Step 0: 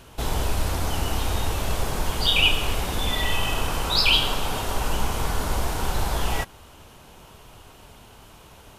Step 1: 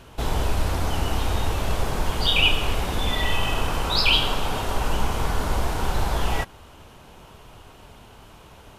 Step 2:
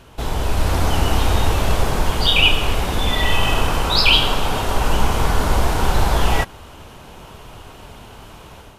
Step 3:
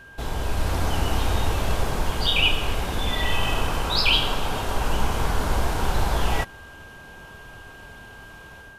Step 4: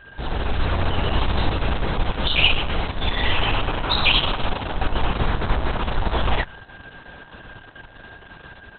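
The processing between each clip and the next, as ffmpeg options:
-af "highshelf=f=5000:g=-7,volume=1.19"
-af "dynaudnorm=f=390:g=3:m=2.11,volume=1.12"
-af "aeval=exprs='val(0)+0.0126*sin(2*PI*1600*n/s)':c=same,volume=0.501"
-af "volume=1.41" -ar 48000 -c:a libopus -b:a 6k

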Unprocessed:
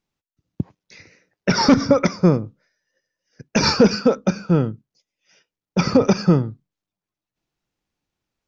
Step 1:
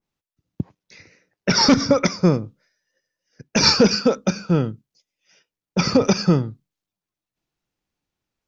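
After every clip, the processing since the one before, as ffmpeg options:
-af "adynamicequalizer=threshold=0.0158:dfrequency=2200:dqfactor=0.7:tfrequency=2200:tqfactor=0.7:attack=5:release=100:ratio=0.375:range=3.5:mode=boostabove:tftype=highshelf,volume=0.841"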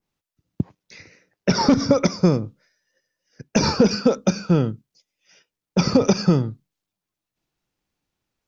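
-filter_complex "[0:a]acrossover=split=1100|3000[s0][s1][s2];[s0]acompressor=threshold=0.2:ratio=4[s3];[s1]acompressor=threshold=0.01:ratio=4[s4];[s2]acompressor=threshold=0.0282:ratio=4[s5];[s3][s4][s5]amix=inputs=3:normalize=0,volume=1.33"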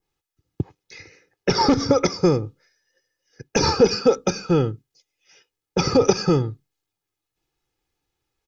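-af "aecho=1:1:2.4:0.62"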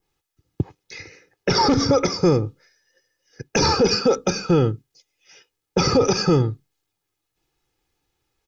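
-af "alimiter=limit=0.211:level=0:latency=1:release=17,volume=1.68"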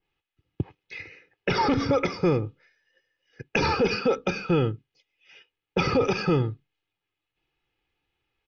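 -af "lowpass=f=2800:t=q:w=2.5,volume=0.531"

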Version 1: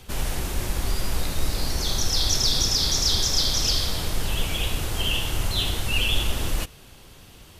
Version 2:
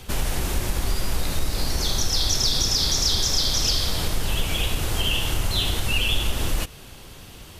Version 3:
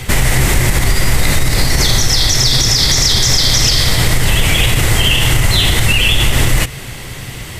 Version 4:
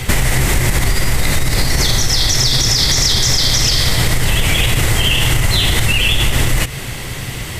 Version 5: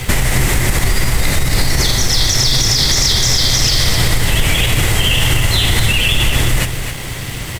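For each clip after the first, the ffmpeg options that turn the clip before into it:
-af "acompressor=threshold=0.0501:ratio=2,volume=1.78"
-af "equalizer=f=125:t=o:w=0.33:g=12,equalizer=f=2000:t=o:w=0.33:g=12,equalizer=f=8000:t=o:w=0.33:g=5,alimiter=level_in=5.01:limit=0.891:release=50:level=0:latency=1,volume=0.891"
-af "acompressor=threshold=0.251:ratio=6,volume=1.33"
-filter_complex "[0:a]aecho=1:1:260:0.355,asplit=2[s0][s1];[s1]acrusher=bits=3:mix=0:aa=0.000001,volume=0.316[s2];[s0][s2]amix=inputs=2:normalize=0,volume=0.75"

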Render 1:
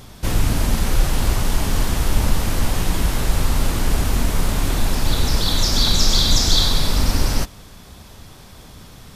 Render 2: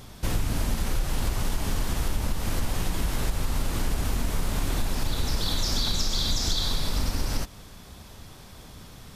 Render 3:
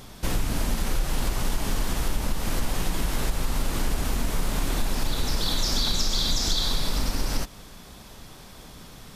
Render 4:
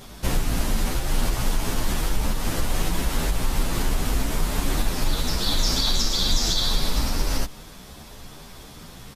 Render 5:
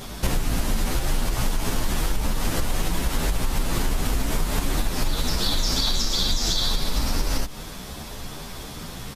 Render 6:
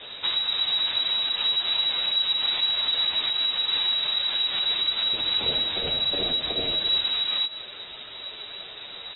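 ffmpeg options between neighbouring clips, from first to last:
-af "acompressor=threshold=0.141:ratio=6,volume=0.631"
-af "equalizer=f=84:w=1.6:g=-8,volume=1.26"
-filter_complex "[0:a]asplit=2[s0][s1];[s1]adelay=10.3,afreqshift=2.5[s2];[s0][s2]amix=inputs=2:normalize=1,volume=1.88"
-af "acompressor=threshold=0.0562:ratio=6,volume=2.11"
-af "flanger=delay=4.5:depth=4.2:regen=64:speed=1.3:shape=sinusoidal,crystalizer=i=3:c=0,lowpass=f=3300:t=q:w=0.5098,lowpass=f=3300:t=q:w=0.6013,lowpass=f=3300:t=q:w=0.9,lowpass=f=3300:t=q:w=2.563,afreqshift=-3900"

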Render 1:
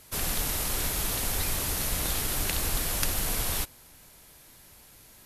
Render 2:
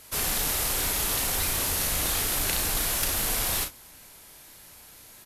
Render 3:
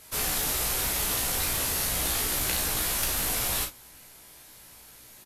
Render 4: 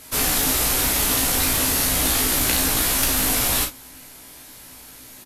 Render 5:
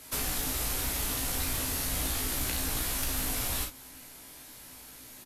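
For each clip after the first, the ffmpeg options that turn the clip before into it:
-af "asoftclip=type=tanh:threshold=0.112,lowshelf=f=310:g=-6,aecho=1:1:35|58:0.473|0.158,volume=1.5"
-filter_complex "[0:a]asplit=2[s0][s1];[s1]adelay=16,volume=0.562[s2];[s0][s2]amix=inputs=2:normalize=0,volume=0.794"
-af "equalizer=f=270:w=7.9:g=13.5,volume=2.37"
-filter_complex "[0:a]acrossover=split=120[s0][s1];[s1]acompressor=threshold=0.0631:ratio=6[s2];[s0][s2]amix=inputs=2:normalize=0,volume=0.501"

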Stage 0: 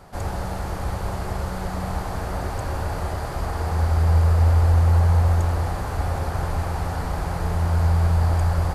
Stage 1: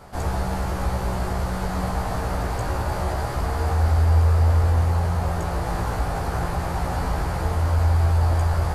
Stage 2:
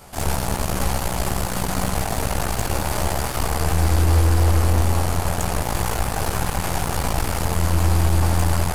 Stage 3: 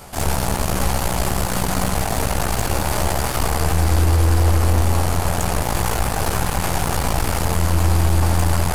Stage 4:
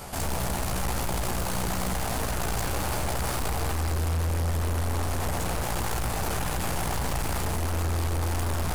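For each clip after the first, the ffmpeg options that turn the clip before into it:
-filter_complex "[0:a]asplit=2[s0][s1];[s1]alimiter=limit=0.119:level=0:latency=1,volume=0.891[s2];[s0][s2]amix=inputs=2:normalize=0,flanger=delay=15:depth=2.6:speed=0.25"
-af "aexciter=amount=2.3:drive=4.4:freq=2400,aeval=exprs='0.376*(cos(1*acos(clip(val(0)/0.376,-1,1)))-cos(1*PI/2))+0.0668*(cos(8*acos(clip(val(0)/0.376,-1,1)))-cos(8*PI/2))':c=same,bandreject=f=59.56:t=h:w=4,bandreject=f=119.12:t=h:w=4,bandreject=f=178.68:t=h:w=4,bandreject=f=238.24:t=h:w=4,bandreject=f=297.8:t=h:w=4,bandreject=f=357.36:t=h:w=4,bandreject=f=416.92:t=h:w=4,bandreject=f=476.48:t=h:w=4,bandreject=f=536.04:t=h:w=4,bandreject=f=595.6:t=h:w=4,bandreject=f=655.16:t=h:w=4,bandreject=f=714.72:t=h:w=4,bandreject=f=774.28:t=h:w=4,bandreject=f=833.84:t=h:w=4,bandreject=f=893.4:t=h:w=4,bandreject=f=952.96:t=h:w=4,bandreject=f=1012.52:t=h:w=4,bandreject=f=1072.08:t=h:w=4,bandreject=f=1131.64:t=h:w=4,bandreject=f=1191.2:t=h:w=4,bandreject=f=1250.76:t=h:w=4,bandreject=f=1310.32:t=h:w=4,bandreject=f=1369.88:t=h:w=4,bandreject=f=1429.44:t=h:w=4,bandreject=f=1489:t=h:w=4,bandreject=f=1548.56:t=h:w=4,bandreject=f=1608.12:t=h:w=4"
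-af "alimiter=limit=0.224:level=0:latency=1:release=29,areverse,acompressor=mode=upward:threshold=0.0501:ratio=2.5,areverse,volume=1.58"
-af "asoftclip=type=tanh:threshold=0.0668"

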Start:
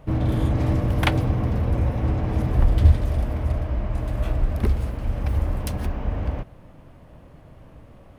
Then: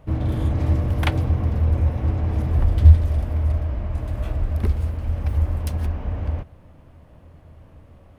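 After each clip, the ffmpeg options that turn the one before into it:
-af "equalizer=f=81:w=6.7:g=13,volume=0.708"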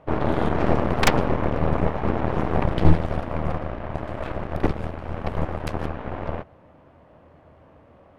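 -af "bandpass=f=800:t=q:w=0.51:csg=0,aeval=exprs='0.299*(cos(1*acos(clip(val(0)/0.299,-1,1)))-cos(1*PI/2))+0.133*(cos(8*acos(clip(val(0)/0.299,-1,1)))-cos(8*PI/2))':c=same,volume=1.58"

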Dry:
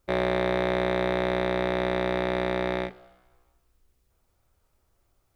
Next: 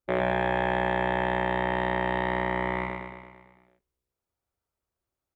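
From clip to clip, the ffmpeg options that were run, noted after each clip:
-filter_complex "[0:a]highpass=f=99:p=1,afwtdn=0.0158,asplit=2[s0][s1];[s1]aecho=0:1:112|224|336|448|560|672|784|896:0.668|0.394|0.233|0.137|0.081|0.0478|0.0282|0.0166[s2];[s0][s2]amix=inputs=2:normalize=0"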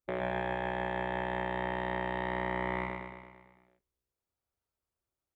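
-af "alimiter=limit=0.126:level=0:latency=1,volume=0.596"

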